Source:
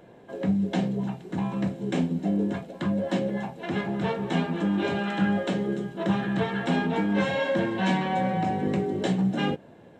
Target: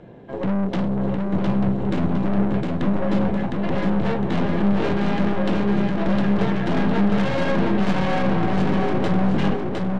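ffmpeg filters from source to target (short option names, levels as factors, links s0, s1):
-af "lowpass=4200,lowshelf=f=330:g=9.5,aeval=exprs='(tanh(22.4*val(0)+0.7)-tanh(0.7))/22.4':c=same,aecho=1:1:709|1418|2127|2836|3545:0.708|0.276|0.108|0.042|0.0164,volume=2.11"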